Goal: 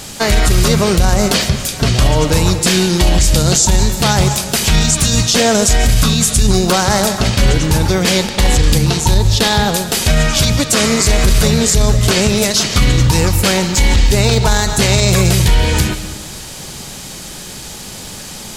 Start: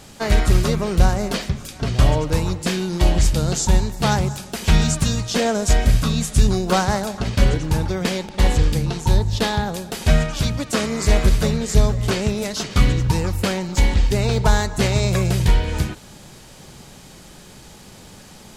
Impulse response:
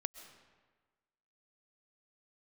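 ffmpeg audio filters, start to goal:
-filter_complex "[0:a]asplit=2[s0][s1];[1:a]atrim=start_sample=2205,highshelf=f=2200:g=11.5[s2];[s1][s2]afir=irnorm=-1:irlink=0,volume=1.58[s3];[s0][s3]amix=inputs=2:normalize=0,alimiter=level_in=1.58:limit=0.891:release=50:level=0:latency=1,volume=0.841"

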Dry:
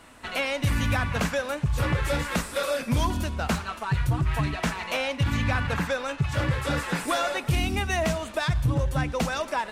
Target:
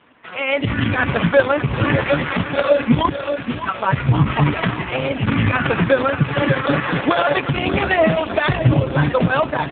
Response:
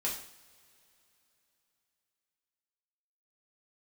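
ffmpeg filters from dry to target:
-filter_complex "[0:a]asettb=1/sr,asplit=3[s0][s1][s2];[s0]atrim=end=3.094[s3];[s1]atrim=start=3.09:end=3.63,asetpts=PTS-STARTPTS,afade=t=in:d=0.004:c=qsin,afade=t=out:st=0.536:d=0.004:c=qsin,aderivative[s4];[s2]atrim=start=3.626[s5];[s3][s4]acrossfade=d=0.004:c1=hsin:c2=qsin[s6];[s6][s5]acrossfade=d=0.004:c1=qsin:c2=hsin,asettb=1/sr,asplit=3[s7][s8][s9];[s7]atrim=end=4.694[s10];[s8]atrim=start=4.69:end=5.23,asetpts=PTS-STARTPTS,afade=t=in:d=0.004:c=qsin,afade=t=out:st=0.536:d=0.004:c=qsin,acrossover=split=490|1400[s11][s12][s13];[s11]acompressor=threshold=0.0178:ratio=4[s14];[s12]acompressor=threshold=0.00708:ratio=4[s15];[s13]acompressor=threshold=0.0141:ratio=4[s16];[s14][s15][s16]amix=inputs=3:normalize=0[s17];[s9]atrim=start=5.226[s18];[s10][s17]acrossfade=d=0.004:c1=hsin:c2=qsin[s19];[s19][s18]acrossfade=d=0.004:c1=qsin:c2=hsin,asplit=3[s20][s21][s22];[s20]afade=t=out:st=5.87:d=0.02[s23];[s21]highpass=f=130:w=0.5412,highpass=f=130:w=1.3066,afade=t=in:st=5.87:d=0.02,afade=t=out:st=6.87:d=0.02[s24];[s22]afade=t=in:st=6.87:d=0.02[s25];[s23][s24][s25]amix=inputs=3:normalize=0,alimiter=limit=0.126:level=0:latency=1:release=66,dynaudnorm=f=210:g=5:m=3.98,aecho=1:1:587|1174|1761|2348|2935|3522|4109:0.355|0.206|0.119|0.0692|0.0402|0.0233|0.0135,volume=1.41" -ar 8000 -c:a libopencore_amrnb -b:a 4750

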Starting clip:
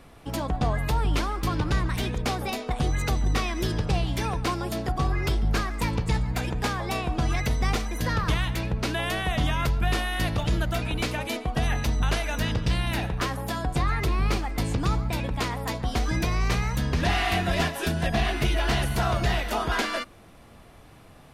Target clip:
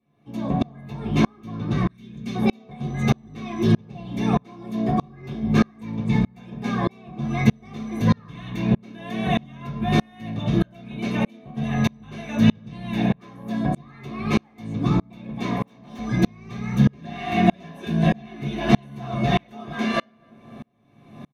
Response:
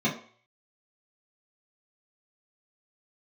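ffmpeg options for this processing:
-filter_complex "[0:a]asettb=1/sr,asplit=3[s0][s1][s2];[s0]atrim=end=13.884[s3];[s1]atrim=start=13.88:end=14.63,asetpts=PTS-STARTPTS,afade=t=in:d=0.004:c=qsin,afade=t=out:st=0.746:d=0.004:c=qsin,lowshelf=f=430:g=-7.5[s4];[s2]atrim=start=14.626[s5];[s3][s4]acrossfade=d=0.004:c1=hsin:c2=qsin[s6];[s6][s5]acrossfade=d=0.004:c1=qsin:c2=hsin,asplit=2[s7][s8];[s8]adelay=256,lowpass=f=1700:p=1,volume=0.178,asplit=2[s9][s10];[s10]adelay=256,lowpass=f=1700:p=1,volume=0.4,asplit=2[s11][s12];[s12]adelay=256,lowpass=f=1700:p=1,volume=0.4,asplit=2[s13][s14];[s14]adelay=256,lowpass=f=1700:p=1,volume=0.4[s15];[s7][s9][s11][s13][s15]amix=inputs=5:normalize=0,asoftclip=type=tanh:threshold=0.133,asettb=1/sr,asplit=3[s16][s17][s18];[s16]atrim=end=1.864[s19];[s17]atrim=start=1.86:end=2.35,asetpts=PTS-STARTPTS,afade=t=in:d=0.004:c=qsin,afade=t=out:st=0.486:d=0.004:c=qsin,equalizer=f=760:t=o:w=2:g=-14[s20];[s18]atrim=start=2.346[s21];[s19][s20]acrossfade=d=0.004:c1=hsin:c2=qsin[s22];[s22][s21]acrossfade=d=0.004:c1=qsin:c2=hsin,asettb=1/sr,asplit=3[s23][s24][s25];[s23]atrim=end=15.554[s26];[s24]atrim=start=15.55:end=15.99,asetpts=PTS-STARTPTS,afade=t=in:d=0.004:c=qsin,afade=t=out:st=0.436:d=0.004:c=qsin,aeval=exprs='0.0355*(abs(mod(val(0)/0.0355+3,4)-2)-1)':c=same[s27];[s25]atrim=start=15.986[s28];[s26][s27]acrossfade=d=0.004:c1=hsin:c2=qsin[s29];[s29][s28]acrossfade=d=0.004:c1=qsin:c2=hsin[s30];[1:a]atrim=start_sample=2205[s31];[s30][s31]afir=irnorm=-1:irlink=0,aeval=exprs='val(0)*pow(10,-35*if(lt(mod(-1.6*n/s,1),2*abs(-1.6)/1000),1-mod(-1.6*n/s,1)/(2*abs(-1.6)/1000),(mod(-1.6*n/s,1)-2*abs(-1.6)/1000)/(1-2*abs(-1.6)/1000))/20)':c=same,volume=0.708"

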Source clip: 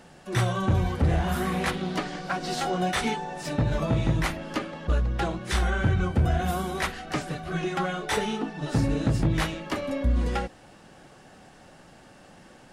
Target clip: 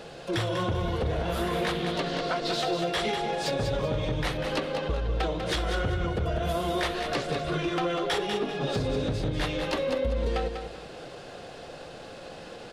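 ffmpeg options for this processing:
-filter_complex "[0:a]equalizer=f=250:t=o:w=1:g=-4,equalizer=f=500:t=o:w=1:g=10,equalizer=f=4000:t=o:w=1:g=9,equalizer=f=8000:t=o:w=1:g=-3,acompressor=threshold=0.0355:ratio=6,asoftclip=type=tanh:threshold=0.075,asetrate=41625,aresample=44100,atempo=1.05946,asplit=2[s0][s1];[s1]aecho=0:1:195|390|585:0.447|0.121|0.0326[s2];[s0][s2]amix=inputs=2:normalize=0,volume=1.58"

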